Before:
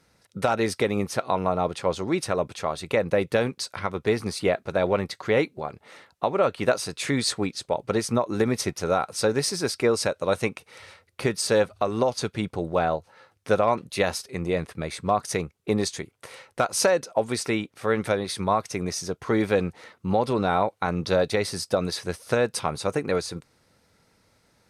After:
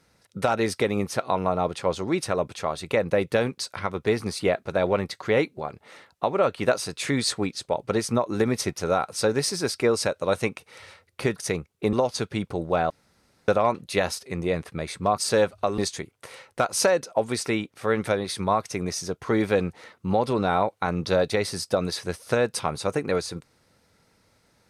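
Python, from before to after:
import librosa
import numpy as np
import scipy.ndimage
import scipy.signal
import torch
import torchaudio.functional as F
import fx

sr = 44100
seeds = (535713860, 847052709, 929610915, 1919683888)

y = fx.edit(x, sr, fx.swap(start_s=11.36, length_s=0.6, other_s=15.21, other_length_s=0.57),
    fx.room_tone_fill(start_s=12.93, length_s=0.58), tone=tone)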